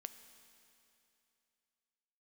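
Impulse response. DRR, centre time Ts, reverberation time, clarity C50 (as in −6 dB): 9.5 dB, 20 ms, 2.8 s, 11.0 dB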